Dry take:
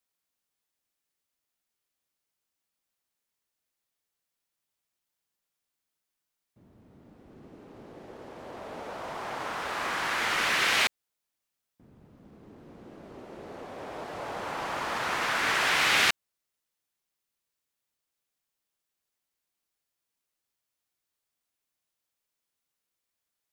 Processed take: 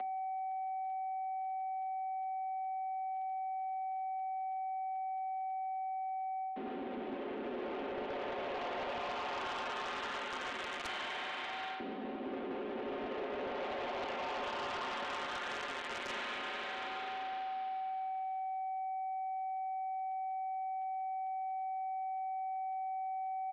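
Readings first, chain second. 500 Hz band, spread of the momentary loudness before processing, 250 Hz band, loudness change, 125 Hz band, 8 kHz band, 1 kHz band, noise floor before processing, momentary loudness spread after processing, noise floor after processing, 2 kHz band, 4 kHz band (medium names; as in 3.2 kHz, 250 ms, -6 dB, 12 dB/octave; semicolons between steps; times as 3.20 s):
-0.5 dB, 21 LU, +0.5 dB, -12.0 dB, -10.0 dB, -19.0 dB, +2.0 dB, -85 dBFS, 2 LU, -41 dBFS, -11.5 dB, -11.5 dB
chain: dead-time distortion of 0.25 ms; Schroeder reverb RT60 2.4 s, combs from 33 ms, DRR 8.5 dB; whistle 700 Hz -67 dBFS; in parallel at +1.5 dB: upward compressor, threshold -46 dBFS; on the sum: comb 6 ms, depth 60%; reverse; compression 6:1, threshold -49 dBFS, peak gain reduction 26 dB; reverse; mistuned SSB +60 Hz 180–3300 Hz; hum notches 50/100/150/200/250/300/350/400 Hz; sine folder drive 9 dB, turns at -36.5 dBFS; trim +2 dB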